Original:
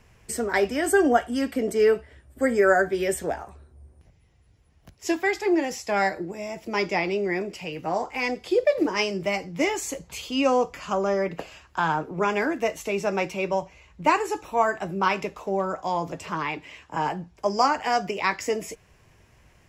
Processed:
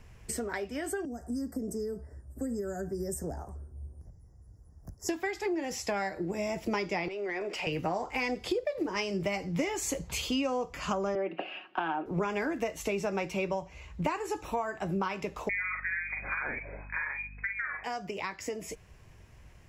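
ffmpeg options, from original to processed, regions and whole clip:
-filter_complex "[0:a]asettb=1/sr,asplit=3[s0][s1][s2];[s0]atrim=end=1.054[s3];[s1]atrim=start=1.05:end=5.09,asetpts=PTS-STARTPTS,afade=t=in:d=0.004:c=qsin,afade=t=out:st=4.036:d=0.004:c=qsin,equalizer=f=2200:t=o:w=1.7:g=-13,acrossover=split=290|3000[s4][s5][s6];[s5]acompressor=threshold=0.01:ratio=3:attack=3.2:release=140:knee=2.83:detection=peak[s7];[s4][s7][s6]amix=inputs=3:normalize=0,asuperstop=centerf=3100:order=12:qfactor=1.1[s8];[s2]atrim=start=5.086[s9];[s3][s8]acrossfade=d=0.004:c1=hsin:c2=qsin[s10];[s10][s9]acrossfade=d=0.004:c1=qsin:c2=hsin,asettb=1/sr,asplit=3[s11][s12][s13];[s11]atrim=end=7.084[s14];[s12]atrim=start=7.08:end=7.67,asetpts=PTS-STARTPTS,afade=t=in:d=0.004:c=qsin,afade=t=out:st=0.586:d=0.004:c=qsin,highpass=370,acompressor=threshold=0.0141:ratio=16:attack=3.2:release=140:knee=1:detection=peak,asplit=2[s15][s16];[s16]highpass=f=720:p=1,volume=5.62,asoftclip=type=tanh:threshold=0.0794[s17];[s15][s17]amix=inputs=2:normalize=0,lowpass=f=1900:p=1,volume=0.501[s18];[s13]atrim=start=7.666[s19];[s14][s18]acrossfade=d=0.004:c1=hsin:c2=qsin[s20];[s20][s19]acrossfade=d=0.004:c1=qsin:c2=hsin,asettb=1/sr,asplit=3[s21][s22][s23];[s21]atrim=end=11.154[s24];[s22]atrim=start=11.15:end=12.06,asetpts=PTS-STARTPTS,afade=t=in:d=0.004:c=qsin,afade=t=out:st=0.906:d=0.004:c=qsin,highpass=f=250:w=0.5412,highpass=f=250:w=1.3066,equalizer=f=320:t=q:w=4:g=7,equalizer=f=480:t=q:w=4:g=-5,equalizer=f=730:t=q:w=4:g=6,equalizer=f=1000:t=q:w=4:g=-6,equalizer=f=1900:t=q:w=4:g=-3,equalizer=f=2800:t=q:w=4:g=8,lowpass=f=3000:w=0.5412,lowpass=f=3000:w=1.3066,aecho=1:1:5.4:0.33,atrim=end_sample=40131[s25];[s23]atrim=start=12.056[s26];[s24][s25]acrossfade=d=0.004:c1=hsin:c2=qsin[s27];[s27][s26]acrossfade=d=0.004:c1=qsin:c2=hsin,asettb=1/sr,asplit=3[s28][s29][s30];[s28]atrim=end=15.494[s31];[s29]atrim=start=15.49:end=17.84,asetpts=PTS-STARTPTS,afade=t=in:d=0.004:c=qsin,afade=t=out:st=2.346:d=0.004:c=qsin,asplit=2[s32][s33];[s33]adelay=43,volume=0.596[s34];[s32][s34]amix=inputs=2:normalize=0,atrim=end_sample=103635,lowpass=f=2200:t=q:w=0.5098,lowpass=f=2200:t=q:w=0.6013,lowpass=f=2200:t=q:w=0.9,lowpass=f=2200:t=q:w=2.563,afreqshift=-2600,aeval=exprs='val(0)+0.00282*(sin(2*PI*50*n/s)+sin(2*PI*2*50*n/s)/2+sin(2*PI*3*50*n/s)/3+sin(2*PI*4*50*n/s)/4+sin(2*PI*5*50*n/s)/5)':c=same[s35];[s30]atrim=start=17.836[s36];[s31][s35]acrossfade=d=0.004:c1=hsin:c2=qsin[s37];[s37][s36]acrossfade=d=0.004:c1=qsin:c2=hsin,acompressor=threshold=0.0282:ratio=12,lowshelf=f=120:g=8.5,dynaudnorm=f=700:g=13:m=1.58,volume=0.841"

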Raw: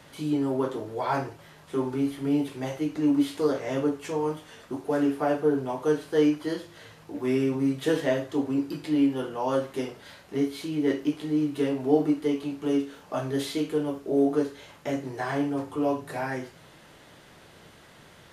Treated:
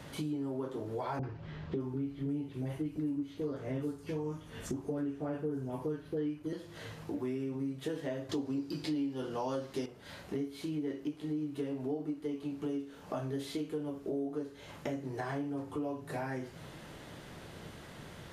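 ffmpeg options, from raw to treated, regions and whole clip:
-filter_complex "[0:a]asettb=1/sr,asplit=3[s0][s1][s2];[s0]atrim=end=1.194[s3];[s1]atrim=start=1.19:end=6.53,asetpts=PTS-STARTPTS,afade=t=in:d=0.004:c=qsin,afade=t=out:st=5.336:d=0.004:c=qsin,lowshelf=f=190:g=10,acrossover=split=750|4900[s4][s5][s6];[s5]adelay=40[s7];[s6]adelay=610[s8];[s4][s7][s8]amix=inputs=3:normalize=0,atrim=end_sample=235494[s9];[s2]atrim=start=6.526[s10];[s3][s9]acrossfade=d=0.004:c1=hsin:c2=qsin[s11];[s11][s10]acrossfade=d=0.004:c1=qsin:c2=hsin,asettb=1/sr,asplit=3[s12][s13][s14];[s12]atrim=end=8.294[s15];[s13]atrim=start=8.29:end=9.86,asetpts=PTS-STARTPTS,afade=t=in:d=0.004:c=qsin,afade=t=out:st=1.566:d=0.004:c=qsin,equalizer=f=4900:t=o:w=1:g=9.5,acontrast=87[s16];[s14]atrim=start=9.856[s17];[s15][s16]acrossfade=d=0.004:c1=hsin:c2=qsin[s18];[s18][s17]acrossfade=d=0.004:c1=qsin:c2=hsin,lowshelf=f=410:g=7,acompressor=threshold=0.0178:ratio=6"

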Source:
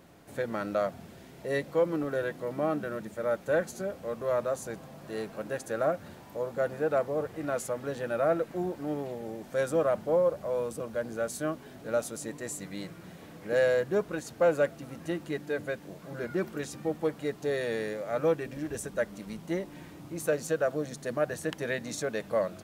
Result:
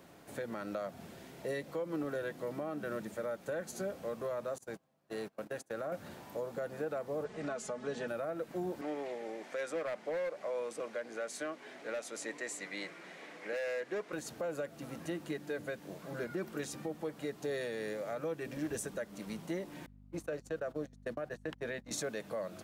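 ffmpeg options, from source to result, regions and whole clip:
-filter_complex "[0:a]asettb=1/sr,asplit=3[s0][s1][s2];[s0]atrim=end=4.584[s3];[s1]atrim=start=4.58:end=5.92,asetpts=PTS-STARTPTS,afade=t=in:d=0.004:c=qsin,afade=t=out:st=1.336:d=0.004:c=qsin,agate=range=0.0398:threshold=0.01:ratio=16:release=100:detection=peak,acompressor=threshold=0.0158:ratio=2:attack=3.2:release=140:knee=1:detection=peak[s4];[s2]atrim=start=5.916[s5];[s3][s4]acrossfade=d=0.004:c1=hsin:c2=qsin[s6];[s6][s5]acrossfade=d=0.004:c1=qsin:c2=hsin,asettb=1/sr,asplit=3[s7][s8][s9];[s7]atrim=end=7.244[s10];[s8]atrim=start=7.24:end=8.08,asetpts=PTS-STARTPTS,afade=t=in:d=0.004:c=qsin,afade=t=out:st=0.836:d=0.004:c=qsin,lowpass=f=8000:w=0.5412,lowpass=f=8000:w=1.3066,aecho=1:1:4.7:0.65,atrim=end_sample=37044[s11];[s9]atrim=start=8.076[s12];[s10][s11]acrossfade=d=0.004:c1=hsin:c2=qsin[s13];[s13][s12]acrossfade=d=0.004:c1=qsin:c2=hsin,asettb=1/sr,asplit=3[s14][s15][s16];[s14]atrim=end=8.814[s17];[s15]atrim=start=8.81:end=14.13,asetpts=PTS-STARTPTS,afade=t=in:d=0.004:c=qsin,afade=t=out:st=5.316:d=0.004:c=qsin,highpass=350,lowpass=7300,asoftclip=type=hard:threshold=0.0668,equalizer=f=2100:w=2.5:g=8.5[s18];[s16]atrim=start=14.126[s19];[s17][s18]acrossfade=d=0.004:c1=hsin:c2=qsin[s20];[s20][s19]acrossfade=d=0.004:c1=qsin:c2=hsin,asettb=1/sr,asplit=3[s21][s22][s23];[s21]atrim=end=19.864[s24];[s22]atrim=start=19.86:end=21.91,asetpts=PTS-STARTPTS,afade=t=in:d=0.004:c=qsin,afade=t=out:st=2.046:d=0.004:c=qsin,agate=range=0.0251:threshold=0.0141:ratio=16:release=100:detection=peak,highshelf=f=5200:g=-8.5,aeval=exprs='val(0)+0.00316*(sin(2*PI*50*n/s)+sin(2*PI*2*50*n/s)/2+sin(2*PI*3*50*n/s)/3+sin(2*PI*4*50*n/s)/4+sin(2*PI*5*50*n/s)/5)':c=same[s25];[s23]atrim=start=21.906[s26];[s24][s25]acrossfade=d=0.004:c1=hsin:c2=qsin[s27];[s27][s26]acrossfade=d=0.004:c1=qsin:c2=hsin,lowshelf=f=120:g=-9,alimiter=level_in=1.41:limit=0.0631:level=0:latency=1:release=200,volume=0.708,acrossover=split=320|3000[s28][s29][s30];[s29]acompressor=threshold=0.00891:ratio=1.5[s31];[s28][s31][s30]amix=inputs=3:normalize=0"

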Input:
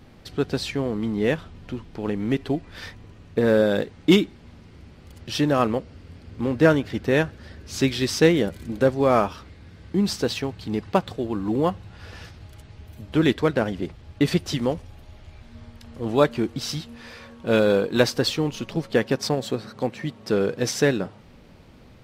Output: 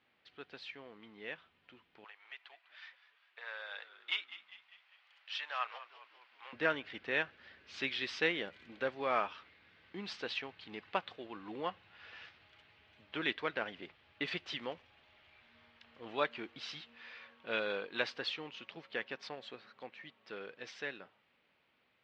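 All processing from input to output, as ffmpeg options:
-filter_complex "[0:a]asettb=1/sr,asplit=3[s0][s1][s2];[s0]atrim=end=2.044[s3];[s1]atrim=start=2.04:end=6.53,asetpts=PTS-STARTPTS,afade=t=in:d=0.004:c=qsin,afade=t=out:st=4.486:d=0.004:c=qsin,highpass=f=770:w=0.5412,highpass=f=770:w=1.3066,asplit=6[s4][s5][s6][s7][s8][s9];[s5]adelay=200,afreqshift=-84,volume=0.178[s10];[s6]adelay=400,afreqshift=-168,volume=0.0891[s11];[s7]adelay=600,afreqshift=-252,volume=0.0447[s12];[s8]adelay=800,afreqshift=-336,volume=0.0221[s13];[s9]adelay=1000,afreqshift=-420,volume=0.0111[s14];[s4][s10][s11][s12][s13][s14]amix=inputs=6:normalize=0,atrim=end_sample=198009[s15];[s2]atrim=start=6.526[s16];[s3][s15]acrossfade=d=0.004:c1=hsin:c2=qsin[s17];[s17][s16]acrossfade=d=0.004:c1=qsin:c2=hsin,aderivative,dynaudnorm=f=870:g=11:m=2.51,lowpass=f=2900:w=0.5412,lowpass=f=2900:w=1.3066,volume=0.75"

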